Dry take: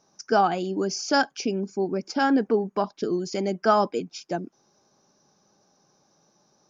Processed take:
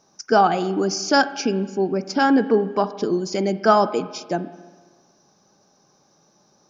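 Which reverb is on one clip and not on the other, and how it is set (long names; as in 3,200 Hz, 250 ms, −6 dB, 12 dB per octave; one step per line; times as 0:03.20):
spring reverb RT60 1.4 s, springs 37/46 ms, chirp 45 ms, DRR 13 dB
level +4.5 dB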